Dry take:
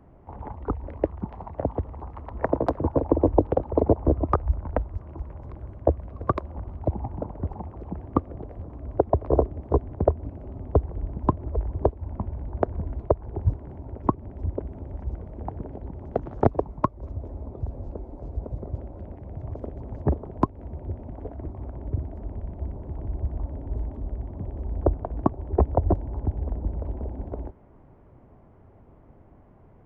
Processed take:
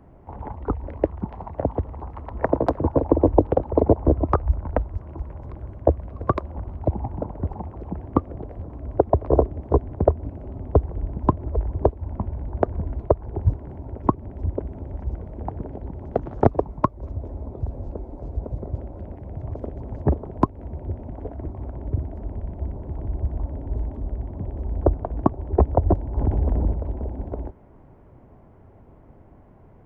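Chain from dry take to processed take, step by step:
notch filter 1,200 Hz, Q 27
0:26.17–0:26.73: envelope flattener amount 70%
level +3 dB

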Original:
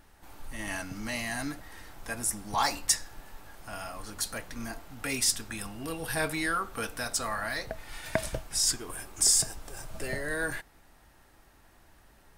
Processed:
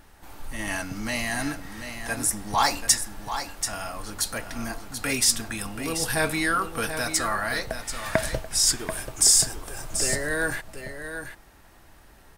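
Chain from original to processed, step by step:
single-tap delay 735 ms −9 dB
level +5.5 dB

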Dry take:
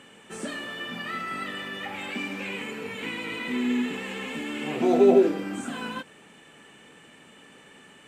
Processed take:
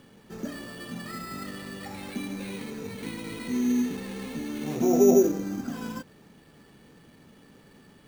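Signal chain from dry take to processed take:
RIAA equalisation playback
decimation without filtering 7×
level −5.5 dB

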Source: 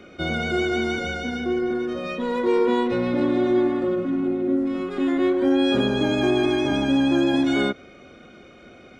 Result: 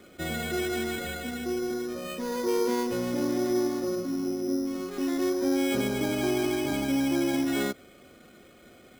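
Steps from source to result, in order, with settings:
bad sample-rate conversion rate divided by 8×, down none, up hold
level −6.5 dB

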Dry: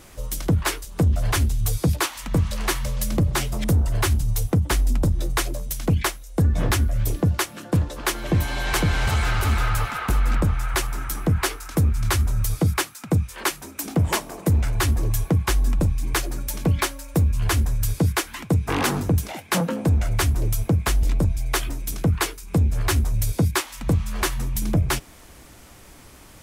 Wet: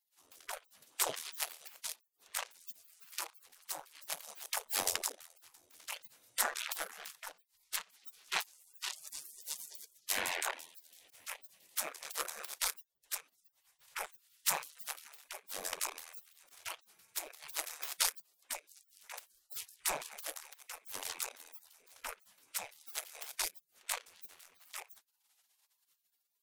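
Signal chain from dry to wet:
rotating-speaker cabinet horn 0.6 Hz
harmonic generator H 3 −9 dB, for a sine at −9.5 dBFS
gate on every frequency bin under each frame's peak −30 dB weak
level +13 dB

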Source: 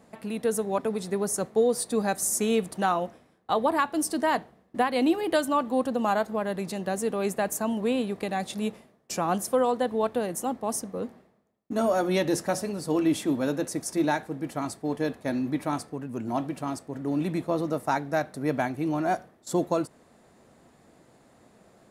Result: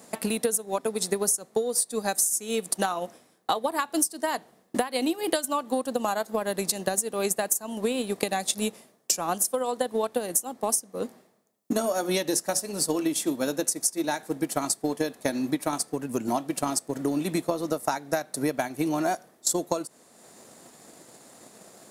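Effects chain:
high-pass filter 130 Hz
bass and treble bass −4 dB, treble +13 dB
transient designer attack +7 dB, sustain −5 dB
downward compressor 10 to 1, threshold −28 dBFS, peak gain reduction 20 dB
level +5.5 dB

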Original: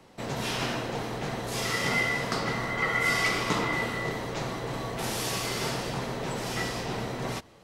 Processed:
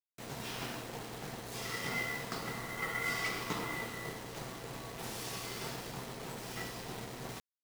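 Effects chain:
bit-depth reduction 6 bits, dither none
notch filter 580 Hz, Q 12
dead-zone distortion −40 dBFS
level −8.5 dB

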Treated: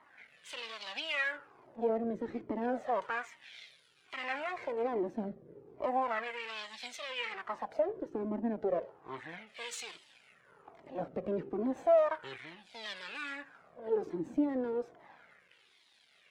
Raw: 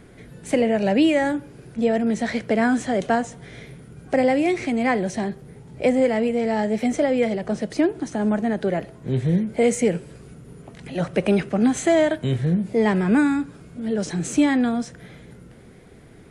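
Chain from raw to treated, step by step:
low-shelf EQ 280 Hz −6.5 dB
brickwall limiter −16 dBFS, peak gain reduction 6.5 dB
half-wave rectification
auto-filter band-pass sine 0.33 Hz 290–3,900 Hz
flanger whose copies keep moving one way falling 1.2 Hz
level +8 dB

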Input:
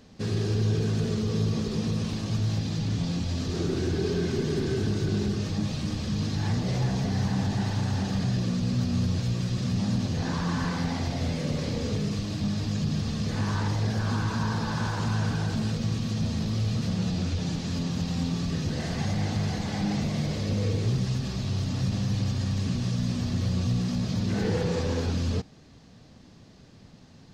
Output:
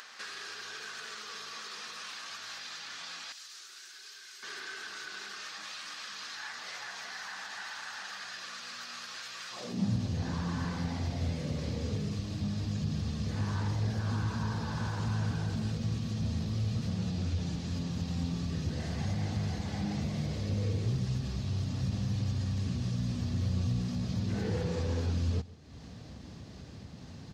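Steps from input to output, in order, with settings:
high-pass filter sweep 1,400 Hz → 64 Hz, 0:09.48–0:09.99
upward compression, threshold −28 dBFS
0:03.32–0:04.43: first-order pre-emphasis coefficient 0.9
on a send: single-tap delay 141 ms −19.5 dB
on the sum: level −7.5 dB

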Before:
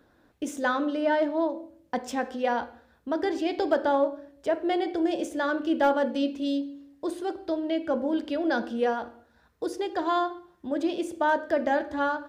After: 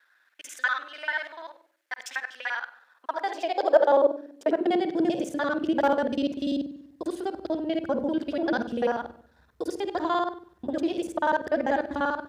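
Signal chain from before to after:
reversed piece by piece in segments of 49 ms
high-pass filter sweep 1,700 Hz → 65 Hz, 0:02.55–0:05.92
hum removal 59.13 Hz, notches 3

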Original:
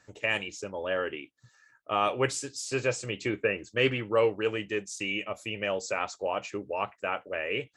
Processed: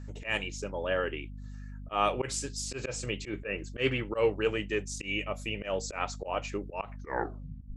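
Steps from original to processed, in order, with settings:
turntable brake at the end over 0.90 s
mains hum 50 Hz, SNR 11 dB
volume swells 113 ms

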